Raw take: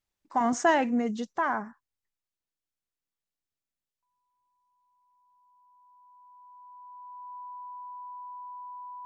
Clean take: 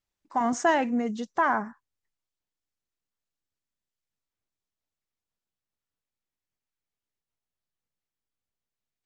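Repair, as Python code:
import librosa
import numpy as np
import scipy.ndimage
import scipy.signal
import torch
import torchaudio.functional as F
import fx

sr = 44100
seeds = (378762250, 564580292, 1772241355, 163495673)

y = fx.notch(x, sr, hz=990.0, q=30.0)
y = fx.gain(y, sr, db=fx.steps((0.0, 0.0), (1.33, 4.0)))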